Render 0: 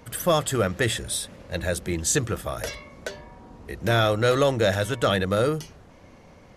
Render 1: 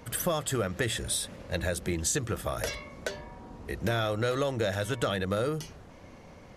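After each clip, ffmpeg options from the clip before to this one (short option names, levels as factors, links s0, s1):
-af "acompressor=threshold=0.0501:ratio=5"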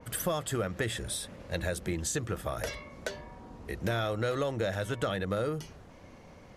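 -af "adynamicequalizer=threshold=0.00501:dfrequency=2800:dqfactor=0.7:tfrequency=2800:tqfactor=0.7:attack=5:release=100:ratio=0.375:range=2:mode=cutabove:tftype=highshelf,volume=0.794"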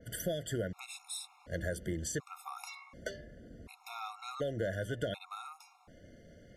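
-af "afftfilt=real='re*gt(sin(2*PI*0.68*pts/sr)*(1-2*mod(floor(b*sr/1024/710),2)),0)':imag='im*gt(sin(2*PI*0.68*pts/sr)*(1-2*mod(floor(b*sr/1024/710),2)),0)':win_size=1024:overlap=0.75,volume=0.668"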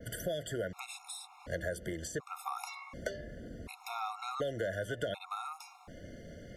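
-filter_complex "[0:a]acrossover=split=510|1200[s0][s1][s2];[s0]acompressor=threshold=0.00316:ratio=4[s3];[s1]acompressor=threshold=0.00708:ratio=4[s4];[s2]acompressor=threshold=0.00251:ratio=4[s5];[s3][s4][s5]amix=inputs=3:normalize=0,volume=2.37"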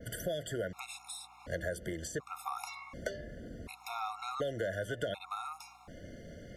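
-af "aeval=exprs='val(0)+0.000251*(sin(2*PI*60*n/s)+sin(2*PI*2*60*n/s)/2+sin(2*PI*3*60*n/s)/3+sin(2*PI*4*60*n/s)/4+sin(2*PI*5*60*n/s)/5)':c=same"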